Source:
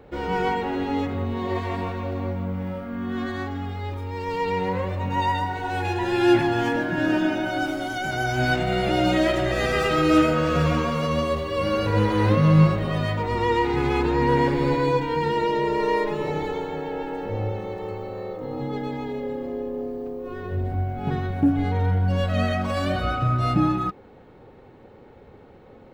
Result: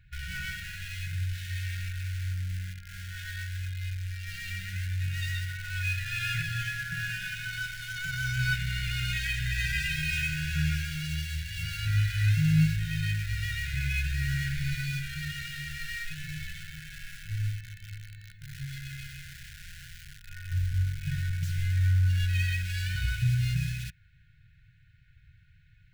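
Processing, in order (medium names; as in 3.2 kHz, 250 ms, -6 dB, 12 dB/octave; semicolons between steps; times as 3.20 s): bass shelf 76 Hz +6.5 dB; small resonant body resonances 260/1100/2500 Hz, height 9 dB, ringing for 35 ms; in parallel at -11 dB: bit crusher 4-bit; on the sum: brick-wall FIR band-stop 160–1400 Hz; trim -6.5 dB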